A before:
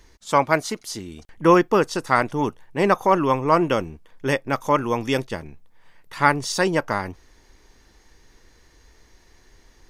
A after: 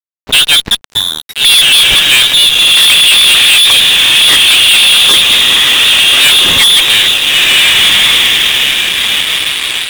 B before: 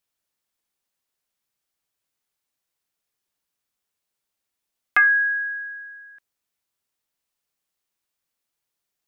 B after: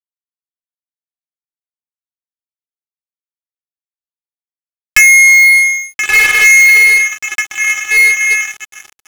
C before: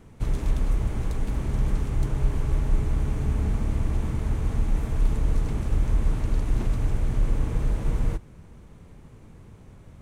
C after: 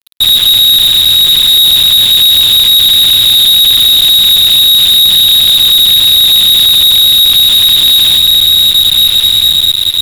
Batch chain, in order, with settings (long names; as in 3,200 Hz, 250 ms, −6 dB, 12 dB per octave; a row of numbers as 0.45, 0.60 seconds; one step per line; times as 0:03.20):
on a send: feedback delay with all-pass diffusion 1,391 ms, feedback 45%, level −5 dB
on the sum: voice inversion scrambler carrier 3,800 Hz
fuzz pedal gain 31 dB, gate −38 dBFS
log-companded quantiser 6 bits
normalise the peak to −1.5 dBFS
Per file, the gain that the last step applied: +9.0, +9.0, +9.0 decibels